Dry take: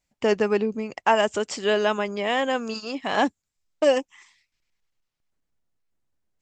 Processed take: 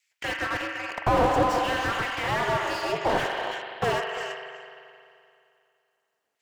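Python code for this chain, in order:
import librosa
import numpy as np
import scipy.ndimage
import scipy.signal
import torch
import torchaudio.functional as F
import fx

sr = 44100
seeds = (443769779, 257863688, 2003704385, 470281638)

p1 = fx.filter_lfo_highpass(x, sr, shape='saw_down', hz=0.63, low_hz=500.0, high_hz=2300.0, q=1.8)
p2 = fx.rev_spring(p1, sr, rt60_s=2.5, pass_ms=(43,), chirp_ms=40, drr_db=7.0)
p3 = p2 * np.sin(2.0 * np.pi * 120.0 * np.arange(len(p2)) / sr)
p4 = p3 + fx.echo_single(p3, sr, ms=338, db=-14.5, dry=0)
p5 = fx.slew_limit(p4, sr, full_power_hz=33.0)
y = p5 * 10.0 ** (8.0 / 20.0)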